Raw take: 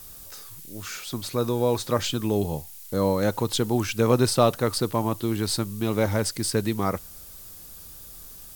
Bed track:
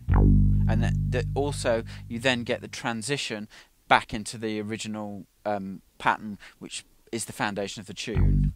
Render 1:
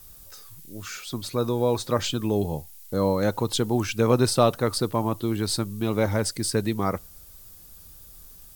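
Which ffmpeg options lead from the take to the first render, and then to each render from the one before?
-af "afftdn=nr=6:nf=-44"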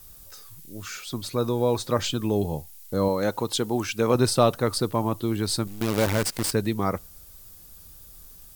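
-filter_complex "[0:a]asettb=1/sr,asplit=3[s0][s1][s2];[s0]atrim=end=3.084[s3];[s1]atrim=start=3.08:end=4.15,asetpts=PTS-STARTPTS,afade=t=in:d=0.004:c=qsin,afade=t=out:st=1.066:d=0.004:c=qsin,lowshelf=f=130:g=-10.5[s4];[s2]atrim=start=4.146[s5];[s3][s4]acrossfade=d=0.004:c1=hsin:c2=qsin[s6];[s6][s5]acrossfade=d=0.004:c1=qsin:c2=hsin,asettb=1/sr,asplit=3[s7][s8][s9];[s7]atrim=end=5.674[s10];[s8]atrim=start=5.67:end=6.52,asetpts=PTS-STARTPTS,afade=t=in:d=0.004:c=qsin,afade=t=out:st=0.846:d=0.004:c=qsin,acrusher=bits=5:dc=4:mix=0:aa=0.000001[s11];[s9]atrim=start=6.516[s12];[s10][s11]acrossfade=d=0.004:c1=hsin:c2=qsin[s13];[s13][s12]acrossfade=d=0.004:c1=qsin:c2=hsin"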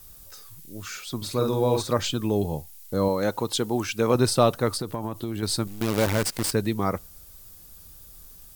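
-filter_complex "[0:a]asettb=1/sr,asplit=3[s0][s1][s2];[s0]atrim=end=1.174[s3];[s1]atrim=start=1.17:end=1.93,asetpts=PTS-STARTPTS,afade=t=in:d=0.004:c=qsin,afade=t=out:st=0.756:d=0.004:c=qsin,asplit=2[s4][s5];[s5]adelay=48,volume=0.631[s6];[s4][s6]amix=inputs=2:normalize=0,atrim=end_sample=33516[s7];[s2]atrim=start=1.926[s8];[s3][s7]acrossfade=d=0.004:c1=hsin:c2=qsin[s9];[s9][s8]acrossfade=d=0.004:c1=qsin:c2=hsin,asettb=1/sr,asplit=3[s10][s11][s12];[s10]atrim=end=4.754[s13];[s11]atrim=start=4.75:end=5.43,asetpts=PTS-STARTPTS,afade=t=in:d=0.004:c=qsin,afade=t=out:st=0.676:d=0.004:c=qsin,acompressor=threshold=0.0562:ratio=6:attack=3.2:release=140:knee=1:detection=peak[s14];[s12]atrim=start=5.426[s15];[s13][s14]acrossfade=d=0.004:c1=hsin:c2=qsin[s16];[s16][s15]acrossfade=d=0.004:c1=qsin:c2=hsin"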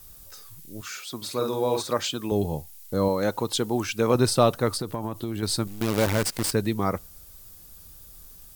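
-filter_complex "[0:a]asettb=1/sr,asplit=3[s0][s1][s2];[s0]atrim=end=0.814[s3];[s1]atrim=start=0.81:end=2.32,asetpts=PTS-STARTPTS,afade=t=in:d=0.004:c=qsin,afade=t=out:st=1.506:d=0.004:c=qsin,highpass=f=330:p=1[s4];[s2]atrim=start=2.316[s5];[s3][s4]acrossfade=d=0.004:c1=hsin:c2=qsin[s6];[s6][s5]acrossfade=d=0.004:c1=qsin:c2=hsin"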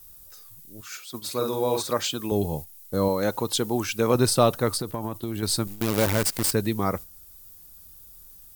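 -af "highshelf=f=10000:g=8,agate=range=0.501:threshold=0.02:ratio=16:detection=peak"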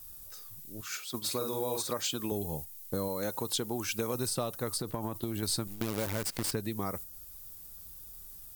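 -filter_complex "[0:a]acrossover=split=5900[s0][s1];[s0]acompressor=threshold=0.0282:ratio=6[s2];[s1]alimiter=level_in=1.06:limit=0.0631:level=0:latency=1:release=475,volume=0.944[s3];[s2][s3]amix=inputs=2:normalize=0"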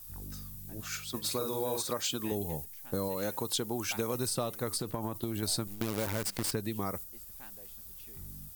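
-filter_complex "[1:a]volume=0.0447[s0];[0:a][s0]amix=inputs=2:normalize=0"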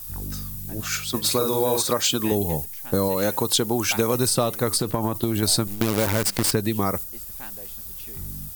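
-af "volume=3.76"

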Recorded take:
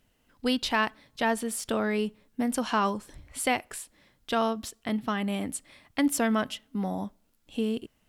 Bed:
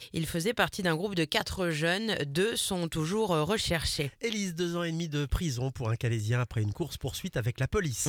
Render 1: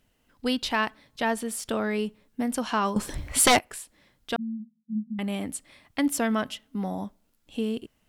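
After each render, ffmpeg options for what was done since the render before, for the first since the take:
-filter_complex "[0:a]asettb=1/sr,asplit=3[s0][s1][s2];[s0]atrim=end=2.964[s3];[s1]atrim=start=2.96:end=3.59,asetpts=PTS-STARTPTS,afade=t=in:d=0.004:c=qsin,afade=t=out:st=0.626:d=0.004:c=qsin,aeval=exprs='0.224*sin(PI/2*3.16*val(0)/0.224)':c=same[s4];[s2]atrim=start=3.586[s5];[s3][s4]acrossfade=d=0.004:c1=hsin:c2=qsin[s6];[s6][s5]acrossfade=d=0.004:c1=qsin:c2=hsin,asettb=1/sr,asplit=3[s7][s8][s9];[s7]atrim=end=4.364[s10];[s8]atrim=start=4.36:end=5.19,asetpts=PTS-STARTPTS,afade=t=in:d=0.004:c=qsin,afade=t=out:st=0.826:d=0.004:c=qsin,asuperpass=centerf=200:order=20:qfactor=2.7[s11];[s9]atrim=start=5.186[s12];[s10][s11]acrossfade=d=0.004:c1=hsin:c2=qsin[s13];[s13][s12]acrossfade=d=0.004:c1=qsin:c2=hsin"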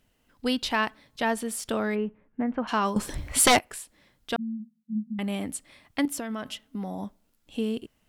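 -filter_complex "[0:a]asplit=3[s0][s1][s2];[s0]afade=t=out:st=1.94:d=0.02[s3];[s1]lowpass=f=2100:w=0.5412,lowpass=f=2100:w=1.3066,afade=t=in:st=1.94:d=0.02,afade=t=out:st=2.67:d=0.02[s4];[s2]afade=t=in:st=2.67:d=0.02[s5];[s3][s4][s5]amix=inputs=3:normalize=0,asettb=1/sr,asplit=3[s6][s7][s8];[s6]atrim=end=6.054[s9];[s7]atrim=start=6.05:end=7.03,asetpts=PTS-STARTPTS,afade=t=in:d=0.004:c=qsin,afade=t=out:st=0.976:d=0.004:c=qsin,acompressor=threshold=0.0355:ratio=6:attack=3.2:release=140:knee=1:detection=peak[s10];[s8]atrim=start=7.026[s11];[s9][s10]acrossfade=d=0.004:c1=hsin:c2=qsin[s12];[s12][s11]acrossfade=d=0.004:c1=qsin:c2=hsin"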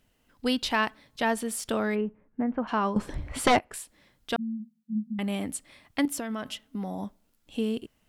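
-filter_complex "[0:a]asettb=1/sr,asplit=3[s0][s1][s2];[s0]atrim=end=2.014[s3];[s1]atrim=start=2.01:end=3.74,asetpts=PTS-STARTPTS,afade=t=in:d=0.004:c=qsin,afade=t=out:st=1.726:d=0.004:c=qsin,lowpass=f=1600:p=1[s4];[s2]atrim=start=3.736[s5];[s3][s4]acrossfade=d=0.004:c1=hsin:c2=qsin[s6];[s6][s5]acrossfade=d=0.004:c1=qsin:c2=hsin"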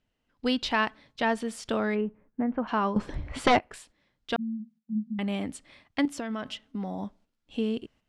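-af "lowpass=5400,agate=range=0.355:threshold=0.00158:ratio=16:detection=peak"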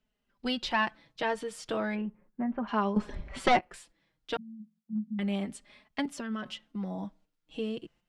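-filter_complex "[0:a]flanger=delay=4.6:depth=2:regen=0:speed=0.34:shape=triangular,acrossover=split=160[s0][s1];[s0]aeval=exprs='clip(val(0),-1,0.0106)':c=same[s2];[s2][s1]amix=inputs=2:normalize=0"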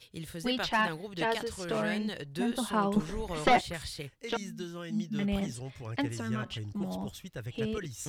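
-filter_complex "[1:a]volume=0.335[s0];[0:a][s0]amix=inputs=2:normalize=0"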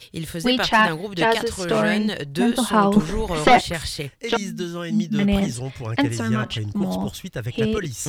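-af "volume=3.76,alimiter=limit=0.794:level=0:latency=1"

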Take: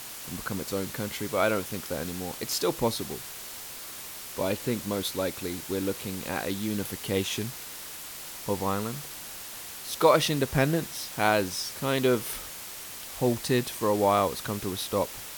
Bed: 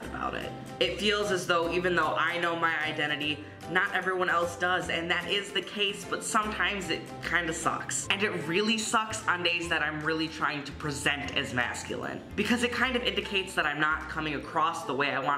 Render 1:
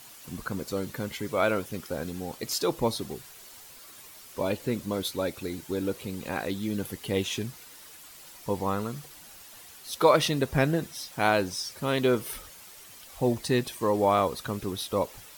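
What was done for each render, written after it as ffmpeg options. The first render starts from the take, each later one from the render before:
-af "afftdn=nr=10:nf=-41"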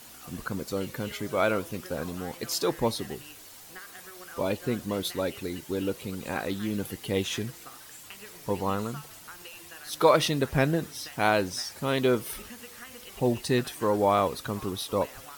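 -filter_complex "[1:a]volume=0.1[s0];[0:a][s0]amix=inputs=2:normalize=0"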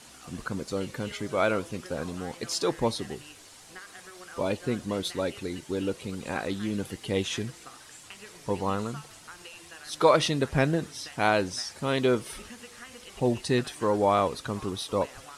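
-af "lowpass=f=10000:w=0.5412,lowpass=f=10000:w=1.3066"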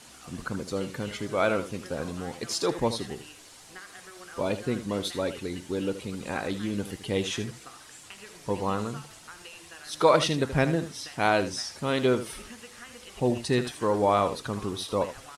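-af "aecho=1:1:78:0.251"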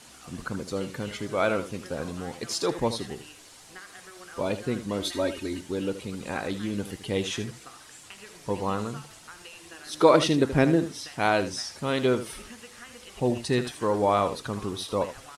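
-filter_complex "[0:a]asettb=1/sr,asplit=3[s0][s1][s2];[s0]atrim=end=5.014[s3];[s1]atrim=start=5.01:end=5.61,asetpts=PTS-STARTPTS,afade=t=in:d=0.004:c=qsin,afade=t=out:st=0.596:d=0.004:c=qsin,aecho=1:1:3.2:0.74,atrim=end_sample=26460[s4];[s2]atrim=start=5.606[s5];[s3][s4]acrossfade=d=0.004:c1=hsin:c2=qsin[s6];[s6][s5]acrossfade=d=0.004:c1=qsin:c2=hsin,asettb=1/sr,asplit=3[s7][s8][s9];[s7]atrim=end=9.654[s10];[s8]atrim=start=9.65:end=10.99,asetpts=PTS-STARTPTS,afade=t=in:d=0.004:c=qsin,afade=t=out:st=1.336:d=0.004:c=qsin,equalizer=f=320:w=1.5:g=7.5[s11];[s9]atrim=start=10.986[s12];[s10][s11]acrossfade=d=0.004:c1=hsin:c2=qsin[s13];[s13][s12]acrossfade=d=0.004:c1=qsin:c2=hsin"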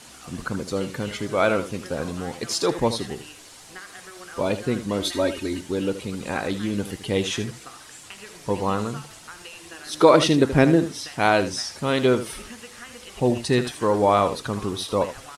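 -af "volume=1.68,alimiter=limit=0.708:level=0:latency=1"

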